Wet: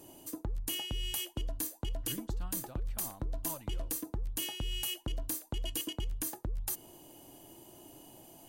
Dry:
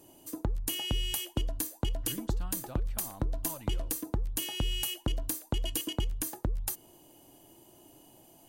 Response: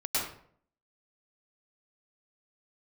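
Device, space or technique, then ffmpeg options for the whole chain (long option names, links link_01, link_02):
compression on the reversed sound: -af "areverse,acompressor=threshold=-36dB:ratio=6,areverse,volume=3dB"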